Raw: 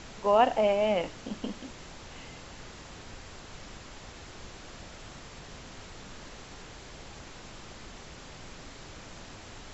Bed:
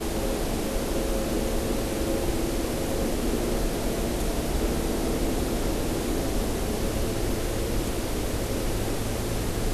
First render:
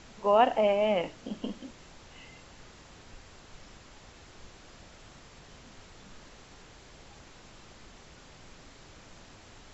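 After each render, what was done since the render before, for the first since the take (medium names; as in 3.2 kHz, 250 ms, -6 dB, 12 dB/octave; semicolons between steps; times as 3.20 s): noise print and reduce 6 dB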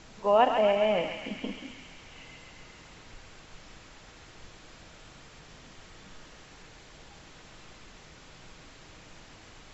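band-passed feedback delay 135 ms, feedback 77%, band-pass 2.3 kHz, level -4 dB; simulated room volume 2900 m³, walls furnished, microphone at 0.56 m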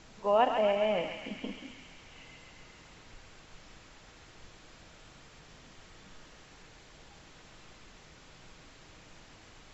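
trim -3.5 dB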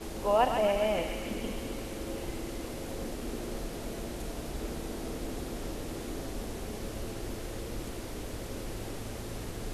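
add bed -11 dB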